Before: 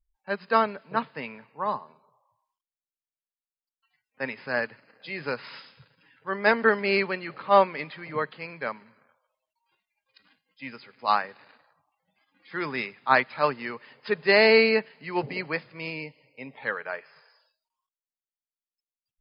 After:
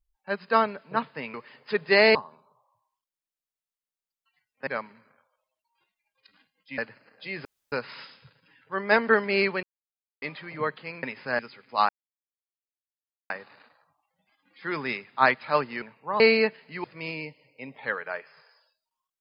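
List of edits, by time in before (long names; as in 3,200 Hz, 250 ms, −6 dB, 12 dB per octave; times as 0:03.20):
0:01.34–0:01.72: swap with 0:13.71–0:14.52
0:04.24–0:04.60: swap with 0:08.58–0:10.69
0:05.27: splice in room tone 0.27 s
0:07.18–0:07.77: silence
0:11.19: splice in silence 1.41 s
0:15.16–0:15.63: remove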